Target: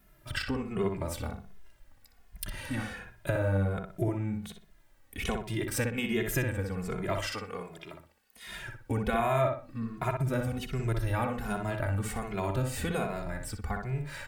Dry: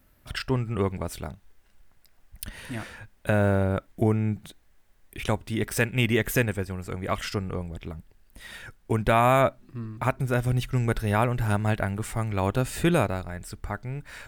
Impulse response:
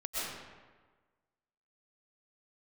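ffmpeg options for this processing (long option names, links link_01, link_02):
-filter_complex "[0:a]asettb=1/sr,asplit=3[link_01][link_02][link_03];[link_01]atrim=end=7.204[link_04];[link_02]atrim=start=7.2:end=8.47,asetpts=PTS-STARTPTS,afade=type=in:duration=0.004:curve=qsin,afade=type=out:start_time=1.266:duration=0.004:curve=qsin,highpass=frequency=920:poles=1[link_05];[link_03]atrim=start=8.466[link_06];[link_04][link_05]acrossfade=duration=0.004:curve1=hsin:curve2=qsin[link_07];[link_07][link_06]acrossfade=duration=0.004:curve1=qsin:curve2=hsin,acompressor=threshold=-30dB:ratio=2.5,asplit=2[link_08][link_09];[link_09]adelay=61,lowpass=frequency=2600:poles=1,volume=-4dB,asplit=2[link_10][link_11];[link_11]adelay=61,lowpass=frequency=2600:poles=1,volume=0.35,asplit=2[link_12][link_13];[link_13]adelay=61,lowpass=frequency=2600:poles=1,volume=0.35,asplit=2[link_14][link_15];[link_15]adelay=61,lowpass=frequency=2600:poles=1,volume=0.35[link_16];[link_10][link_12][link_14][link_16]amix=inputs=4:normalize=0[link_17];[link_08][link_17]amix=inputs=2:normalize=0,asplit=2[link_18][link_19];[link_19]adelay=2.4,afreqshift=-1.3[link_20];[link_18][link_20]amix=inputs=2:normalize=1,volume=3dB"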